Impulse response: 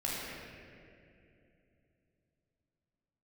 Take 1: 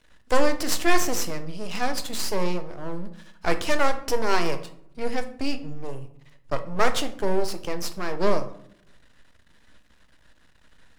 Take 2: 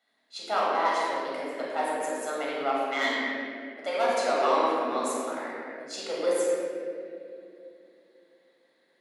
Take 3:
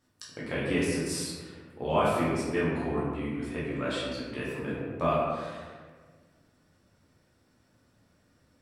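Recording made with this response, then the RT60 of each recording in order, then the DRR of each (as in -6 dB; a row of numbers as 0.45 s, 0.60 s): 2; 0.70 s, 2.7 s, 1.5 s; 8.0 dB, -6.5 dB, -8.0 dB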